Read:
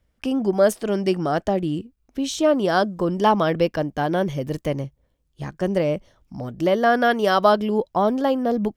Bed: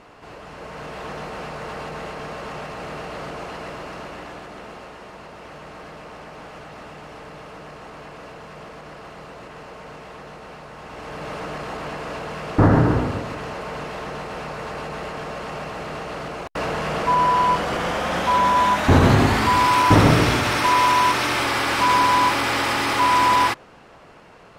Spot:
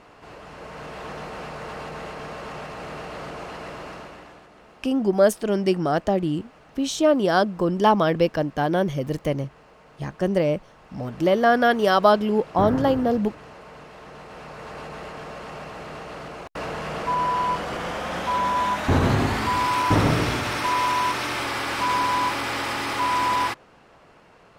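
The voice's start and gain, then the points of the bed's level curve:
4.60 s, 0.0 dB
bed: 3.9 s -2.5 dB
4.51 s -12.5 dB
13.93 s -12.5 dB
14.8 s -5.5 dB

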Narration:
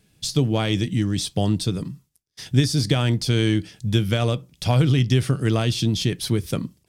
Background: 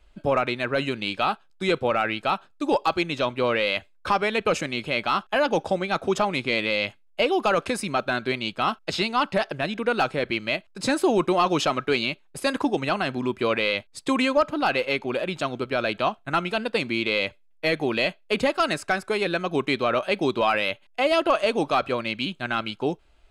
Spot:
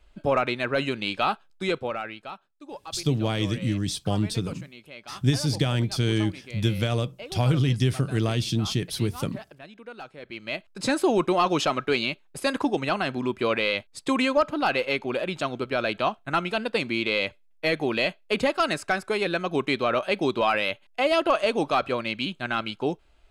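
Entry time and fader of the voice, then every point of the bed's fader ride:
2.70 s, -4.0 dB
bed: 1.55 s -0.5 dB
2.49 s -18 dB
10.16 s -18 dB
10.65 s -1 dB

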